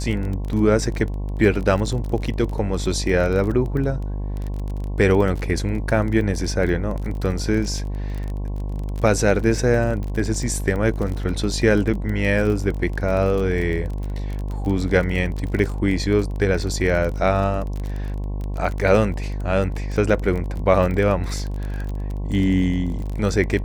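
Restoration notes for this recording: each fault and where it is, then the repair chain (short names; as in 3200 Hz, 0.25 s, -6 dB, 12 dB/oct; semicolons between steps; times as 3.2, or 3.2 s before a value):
buzz 50 Hz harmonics 22 -26 dBFS
crackle 27/s -26 dBFS
15.59 gap 2.3 ms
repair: de-click; de-hum 50 Hz, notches 22; interpolate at 15.59, 2.3 ms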